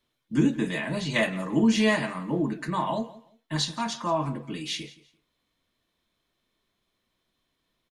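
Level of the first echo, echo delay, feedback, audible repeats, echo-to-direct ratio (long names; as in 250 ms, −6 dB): −19.0 dB, 171 ms, 23%, 2, −19.0 dB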